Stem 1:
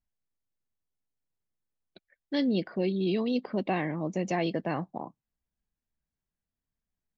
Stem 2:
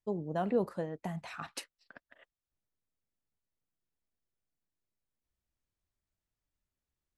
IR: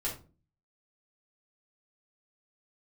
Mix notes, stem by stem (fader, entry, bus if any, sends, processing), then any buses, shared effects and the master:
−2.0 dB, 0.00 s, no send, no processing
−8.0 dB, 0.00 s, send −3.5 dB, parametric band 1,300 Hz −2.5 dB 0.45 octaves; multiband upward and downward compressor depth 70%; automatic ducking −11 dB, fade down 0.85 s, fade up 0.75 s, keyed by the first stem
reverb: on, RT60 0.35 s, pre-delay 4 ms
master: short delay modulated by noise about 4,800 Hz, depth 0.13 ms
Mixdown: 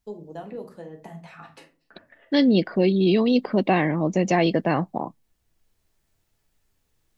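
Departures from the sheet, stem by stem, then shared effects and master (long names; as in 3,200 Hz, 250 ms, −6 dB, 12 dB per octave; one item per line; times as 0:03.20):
stem 1 −2.0 dB → +9.0 dB
master: missing short delay modulated by noise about 4,800 Hz, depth 0.13 ms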